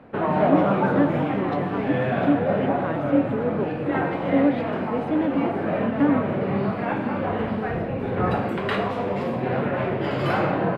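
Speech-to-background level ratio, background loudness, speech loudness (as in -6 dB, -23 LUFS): -2.0 dB, -24.5 LUFS, -26.5 LUFS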